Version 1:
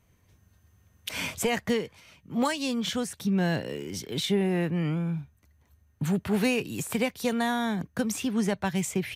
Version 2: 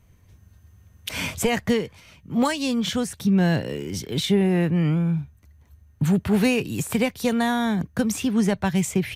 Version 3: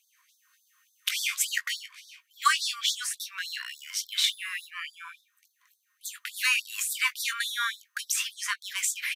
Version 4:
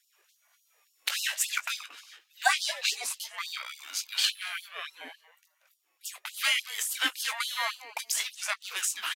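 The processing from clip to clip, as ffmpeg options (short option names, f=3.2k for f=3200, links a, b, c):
-af "lowshelf=f=140:g=9,volume=3.5dB"
-filter_complex "[0:a]highpass=f=700:t=q:w=4.9,asplit=2[a][b];[b]adelay=19,volume=-10dB[c];[a][c]amix=inputs=2:normalize=0,afftfilt=real='re*gte(b*sr/1024,950*pow(3500/950,0.5+0.5*sin(2*PI*3.5*pts/sr)))':imag='im*gte(b*sr/1024,950*pow(3500/950,0.5+0.5*sin(2*PI*3.5*pts/sr)))':win_size=1024:overlap=0.75,volume=3dB"
-filter_complex "[0:a]asplit=2[a][b];[b]adelay=230,lowpass=f=3.1k:p=1,volume=-15.5dB,asplit=2[c][d];[d]adelay=230,lowpass=f=3.1k:p=1,volume=0.17[e];[a][c][e]amix=inputs=3:normalize=0,aeval=exprs='val(0)*sin(2*PI*580*n/s+580*0.3/1*sin(2*PI*1*n/s))':c=same,volume=1.5dB"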